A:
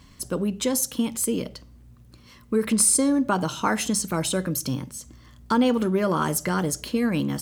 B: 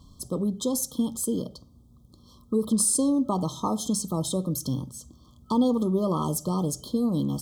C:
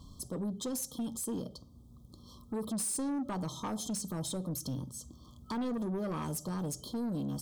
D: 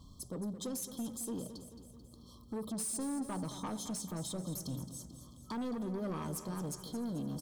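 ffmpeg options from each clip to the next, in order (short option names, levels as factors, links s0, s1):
-af "afftfilt=real='re*(1-between(b*sr/4096,1300,3100))':imag='im*(1-between(b*sr/4096,1300,3100))':win_size=4096:overlap=0.75,lowshelf=f=220:g=7,bandreject=f=60:t=h:w=6,bandreject=f=120:t=h:w=6,volume=0.596"
-af "asoftclip=type=tanh:threshold=0.0596,alimiter=level_in=2.24:limit=0.0631:level=0:latency=1:release=466,volume=0.447"
-af "aecho=1:1:219|438|657|876|1095|1314:0.266|0.149|0.0834|0.0467|0.0262|0.0147,volume=0.668"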